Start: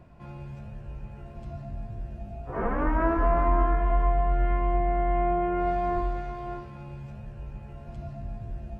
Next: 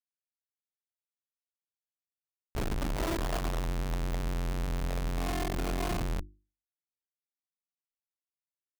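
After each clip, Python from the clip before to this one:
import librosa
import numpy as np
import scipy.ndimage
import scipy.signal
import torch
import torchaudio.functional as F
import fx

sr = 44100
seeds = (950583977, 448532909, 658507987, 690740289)

y = fx.schmitt(x, sr, flips_db=-25.0)
y = fx.hum_notches(y, sr, base_hz=50, count=7)
y = y * 10.0 ** (-3.0 / 20.0)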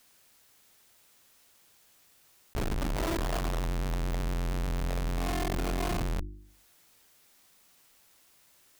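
y = fx.env_flatten(x, sr, amount_pct=50)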